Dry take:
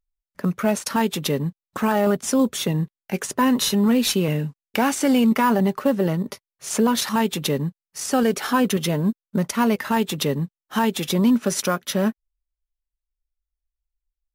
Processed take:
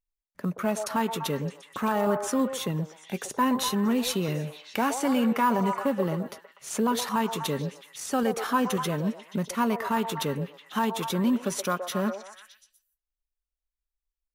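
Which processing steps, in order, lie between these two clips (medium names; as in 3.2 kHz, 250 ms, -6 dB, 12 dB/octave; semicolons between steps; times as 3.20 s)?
peaking EQ 5.1 kHz -3.5 dB 0.24 oct; on a send: repeats whose band climbs or falls 123 ms, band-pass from 620 Hz, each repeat 0.7 oct, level -4 dB; on the sum: dynamic bell 1.1 kHz, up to +5 dB, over -36 dBFS, Q 2.4; trim -7 dB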